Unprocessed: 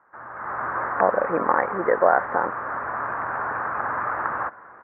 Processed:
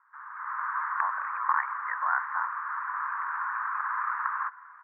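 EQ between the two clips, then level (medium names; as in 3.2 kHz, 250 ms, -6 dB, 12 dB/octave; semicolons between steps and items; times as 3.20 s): Chebyshev high-pass 1 kHz, order 5; treble shelf 2.3 kHz -10.5 dB; 0.0 dB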